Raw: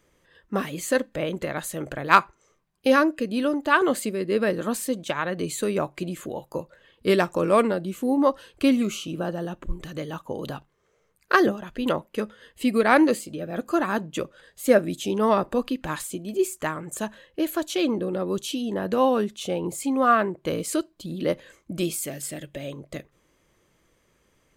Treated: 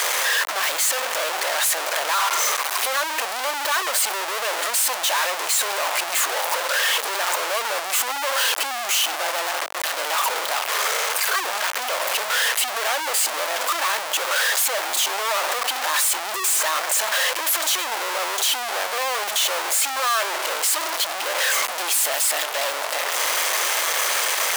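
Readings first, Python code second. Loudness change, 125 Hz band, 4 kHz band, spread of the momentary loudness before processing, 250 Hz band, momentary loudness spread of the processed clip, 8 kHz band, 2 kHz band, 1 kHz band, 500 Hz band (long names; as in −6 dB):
+4.0 dB, below −30 dB, +15.0 dB, 14 LU, −22.5 dB, 4 LU, +16.0 dB, +7.5 dB, +3.5 dB, −4.5 dB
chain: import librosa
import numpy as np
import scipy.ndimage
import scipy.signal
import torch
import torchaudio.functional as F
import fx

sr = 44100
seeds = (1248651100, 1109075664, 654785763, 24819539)

y = np.sign(x) * np.sqrt(np.mean(np.square(x)))
y = scipy.signal.sosfilt(scipy.signal.butter(4, 640.0, 'highpass', fs=sr, output='sos'), y)
y = F.gain(torch.from_numpy(y), 6.0).numpy()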